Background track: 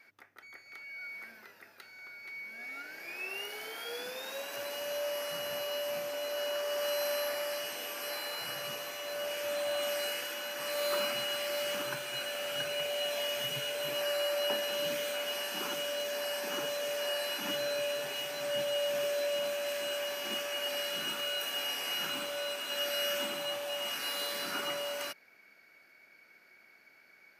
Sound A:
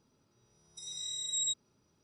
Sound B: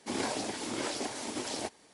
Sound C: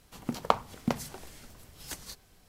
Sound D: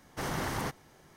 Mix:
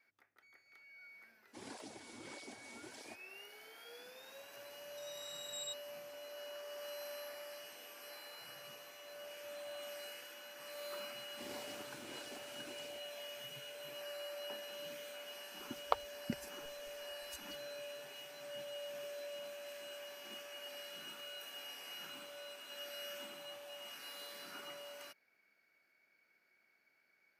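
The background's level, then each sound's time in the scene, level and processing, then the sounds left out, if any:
background track -14 dB
1.47 add B -14 dB + tape flanging out of phase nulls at 1.6 Hz, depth 7.3 ms
4.2 add A -8.5 dB + air absorption 58 m
11.31 add B -17 dB + ending faded out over 0.52 s
15.42 add C -7.5 dB + per-bin expansion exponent 3
not used: D

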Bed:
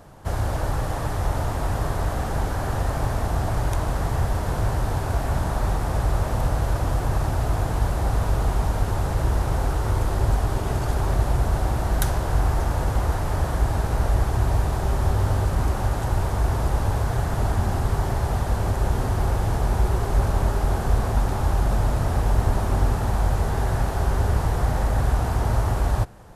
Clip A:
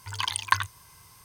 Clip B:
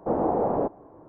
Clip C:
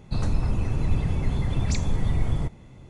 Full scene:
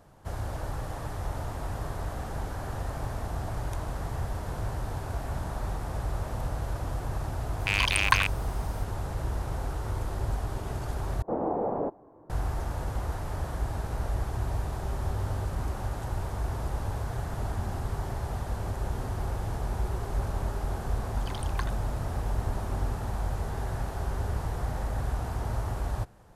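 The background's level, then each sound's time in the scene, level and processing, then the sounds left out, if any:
bed -9.5 dB
7.6 add A -0.5 dB + rattling part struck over -48 dBFS, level -12 dBFS
11.22 replace with B -5 dB
21.07 add A -15 dB
not used: C

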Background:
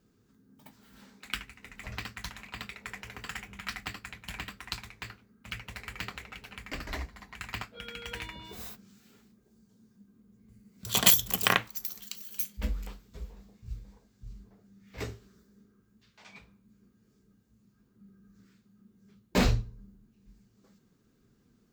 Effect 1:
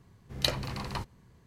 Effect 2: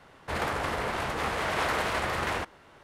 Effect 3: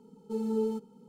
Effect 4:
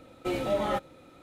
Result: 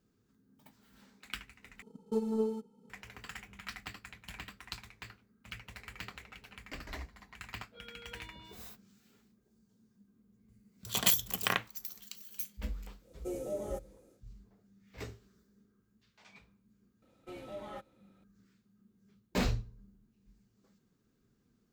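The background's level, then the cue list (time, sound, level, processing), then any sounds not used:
background -6.5 dB
1.82 replace with 3 -4 dB + transient shaper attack +9 dB, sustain -4 dB
13 add 4 -12.5 dB, fades 0.10 s + EQ curve 270 Hz 0 dB, 460 Hz +10 dB, 970 Hz -10 dB, 4000 Hz -11 dB, 6300 Hz +10 dB
17.02 add 4 -16.5 dB
not used: 1, 2

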